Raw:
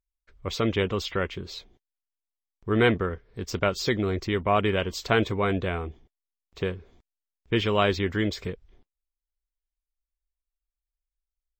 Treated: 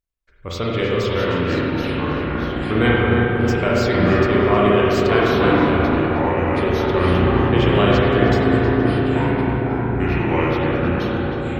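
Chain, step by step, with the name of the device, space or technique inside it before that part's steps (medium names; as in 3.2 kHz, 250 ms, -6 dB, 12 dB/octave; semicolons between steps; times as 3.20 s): ever faster or slower copies 518 ms, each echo -4 st, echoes 3; dub delay into a spring reverb (filtered feedback delay 314 ms, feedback 82%, low-pass 1.9 kHz, level -5 dB; spring tank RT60 2 s, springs 34/46 ms, chirp 65 ms, DRR -4.5 dB)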